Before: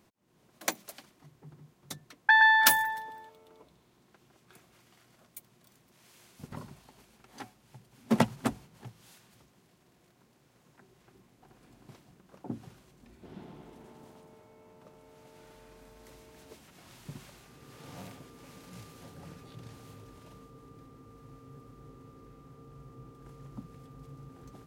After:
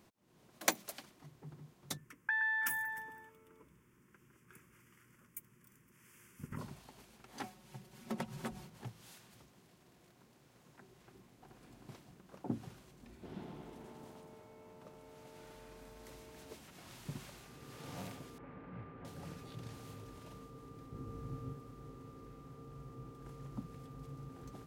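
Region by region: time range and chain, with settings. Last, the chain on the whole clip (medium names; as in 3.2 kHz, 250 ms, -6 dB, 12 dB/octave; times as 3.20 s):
1.97–6.59 s: compression 3:1, threshold -34 dBFS + static phaser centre 1.7 kHz, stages 4
7.43–8.70 s: comb 5.4 ms, depth 98% + compression 5:1, threshold -38 dBFS
18.38–19.05 s: low-pass 2 kHz 24 dB/octave + doubling 41 ms -13.5 dB
20.92–21.53 s: bass shelf 290 Hz +10.5 dB + doubling 31 ms -5 dB
whole clip: none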